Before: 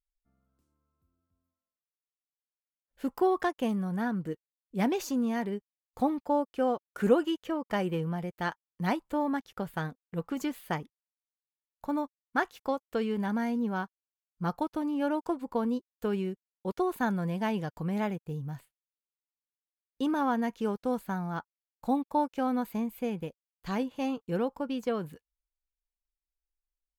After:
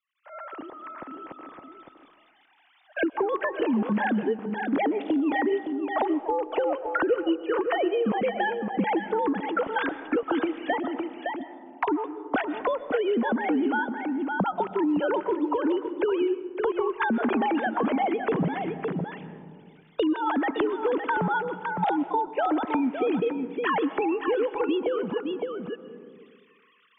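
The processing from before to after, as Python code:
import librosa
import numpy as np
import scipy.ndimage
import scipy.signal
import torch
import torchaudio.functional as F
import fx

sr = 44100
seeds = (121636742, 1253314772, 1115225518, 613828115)

p1 = fx.sine_speech(x, sr)
p2 = fx.recorder_agc(p1, sr, target_db=-16.5, rise_db_per_s=77.0, max_gain_db=30)
p3 = p2 + fx.echo_single(p2, sr, ms=562, db=-9.5, dry=0)
p4 = fx.rev_freeverb(p3, sr, rt60_s=1.2, hf_ratio=0.3, predelay_ms=85, drr_db=14.5)
p5 = fx.band_squash(p4, sr, depth_pct=70)
y = p5 * librosa.db_to_amplitude(-3.0)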